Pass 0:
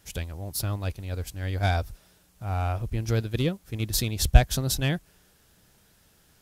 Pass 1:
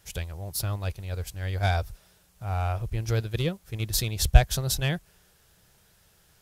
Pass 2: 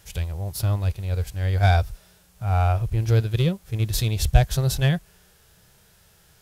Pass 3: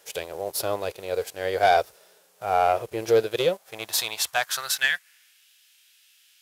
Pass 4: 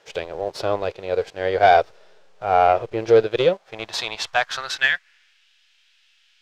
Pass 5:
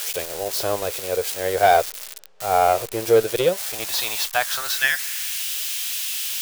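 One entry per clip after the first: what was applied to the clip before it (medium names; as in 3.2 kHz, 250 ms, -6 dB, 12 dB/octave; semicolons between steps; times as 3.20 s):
peaking EQ 260 Hz -12.5 dB 0.44 oct
harmonic-percussive split percussive -10 dB; trim +8 dB
high-pass sweep 460 Hz -> 2.7 kHz, 3.24–5.48 s; waveshaping leveller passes 1
in parallel at -12 dB: hysteresis with a dead band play -21.5 dBFS; on the sum: distance through air 160 m; trim +4 dB
zero-crossing glitches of -16.5 dBFS; trim -1.5 dB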